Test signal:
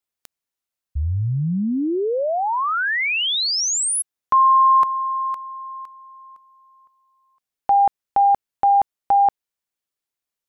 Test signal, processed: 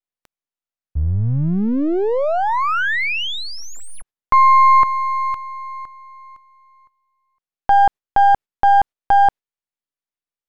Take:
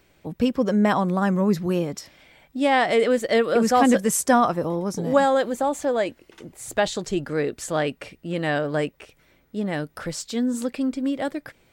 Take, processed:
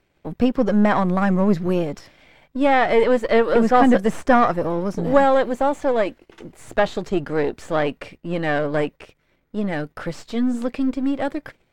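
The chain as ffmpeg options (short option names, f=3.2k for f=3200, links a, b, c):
-filter_complex "[0:a]aeval=exprs='if(lt(val(0),0),0.447*val(0),val(0))':c=same,agate=range=-9dB:threshold=-55dB:ratio=3:release=91:detection=peak,acrossover=split=3300[a][b];[b]acompressor=threshold=-42dB:ratio=4:attack=1:release=60[c];[a][c]amix=inputs=2:normalize=0,aemphasis=mode=reproduction:type=cd,volume=5.5dB"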